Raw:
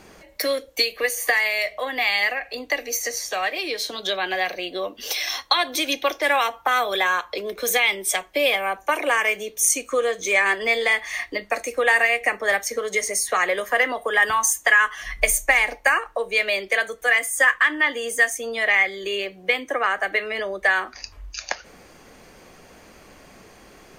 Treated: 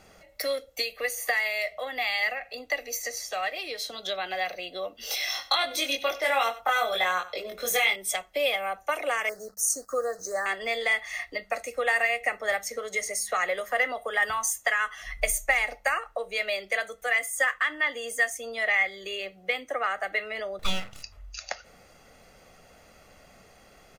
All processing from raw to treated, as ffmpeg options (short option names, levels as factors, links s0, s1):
-filter_complex "[0:a]asettb=1/sr,asplit=3[s0][s1][s2];[s0]atrim=end=4.984[s3];[s1]atrim=start=4.98:end=7.96,asetpts=PTS-STARTPTS,afade=t=in:d=0.004:c=qsin,afade=t=out:st=2.976:d=0.004:c=qsin,aecho=1:1:94:0.15,atrim=end_sample=131418,asoftclip=type=hard:threshold=0.447,asplit=2[s4][s5];[s5]adelay=22,volume=0.794[s6];[s4][s6]amix=inputs=2:normalize=0,atrim=end_sample=131418[s7];[s2]atrim=start=7.956[s8];[s3][s7]acrossfade=d=0.004:c1=hsin:c2=qsin[s9];[s9][s8]acrossfade=d=0.004:c1=qsin:c2=hsin,asettb=1/sr,asplit=3[s10][s11][s12];[s10]atrim=end=9.294[s13];[s11]atrim=start=9.29:end=10.46,asetpts=PTS-STARTPTS,afade=t=in:d=0.004:c=qsin,afade=t=out:st=1.166:d=0.004:c=qsin,acrusher=bits=6:mix=0:aa=0.5,asuperstop=centerf=2800:order=12:qfactor=1.1[s14];[s12]atrim=start=10.456[s15];[s13][s14]acrossfade=d=0.004:c1=hsin:c2=qsin[s16];[s16][s15]acrossfade=d=0.004:c1=qsin:c2=hsin,asettb=1/sr,asplit=3[s17][s18][s19];[s17]atrim=end=20.594[s20];[s18]atrim=start=20.59:end=21.03,asetpts=PTS-STARTPTS,afade=t=in:d=0.004:c=qsin,afade=t=out:st=0.436:d=0.004:c=qsin,agate=range=0.0224:threshold=0.00447:ratio=3:release=100:detection=peak,acompressor=mode=upward:threshold=0.0316:ratio=2.5:attack=3.2:release=140:knee=2.83:detection=peak,aeval=exprs='abs(val(0))':c=same[s21];[s19]atrim=start=21.026[s22];[s20][s21]acrossfade=d=0.004:c1=hsin:c2=qsin[s23];[s23][s22]acrossfade=d=0.004:c1=qsin:c2=hsin,aecho=1:1:1.5:0.49,bandreject=f=50.51:t=h:w=4,bandreject=f=101.02:t=h:w=4,bandreject=f=151.53:t=h:w=4,bandreject=f=202.04:t=h:w=4,volume=0.422"